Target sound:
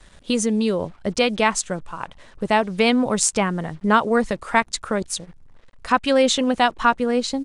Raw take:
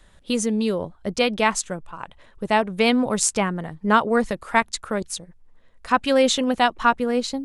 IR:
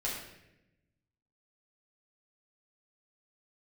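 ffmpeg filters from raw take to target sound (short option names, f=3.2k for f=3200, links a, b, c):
-filter_complex "[0:a]asplit=2[a][b];[b]acompressor=threshold=-25dB:ratio=8,volume=-2dB[c];[a][c]amix=inputs=2:normalize=0,acrusher=bits=7:mix=0:aa=0.5,aresample=22050,aresample=44100,volume=-1dB"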